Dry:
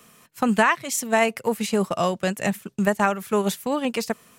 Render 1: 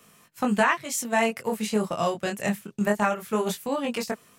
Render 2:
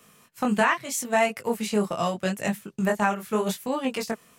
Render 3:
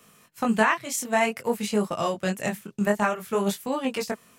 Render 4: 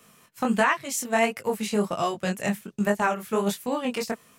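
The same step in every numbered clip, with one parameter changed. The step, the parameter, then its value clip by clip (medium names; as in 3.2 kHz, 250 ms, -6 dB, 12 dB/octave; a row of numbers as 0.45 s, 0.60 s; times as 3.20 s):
chorus, rate: 0.2 Hz, 0.79 Hz, 0.53 Hz, 1.4 Hz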